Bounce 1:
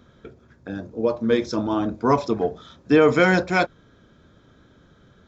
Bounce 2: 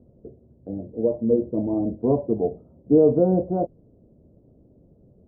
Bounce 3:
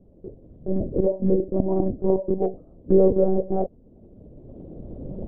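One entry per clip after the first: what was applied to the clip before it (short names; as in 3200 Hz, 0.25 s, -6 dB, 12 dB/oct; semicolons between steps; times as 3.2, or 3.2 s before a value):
steep low-pass 670 Hz 36 dB/oct
recorder AGC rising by 14 dB/s; monotone LPC vocoder at 8 kHz 190 Hz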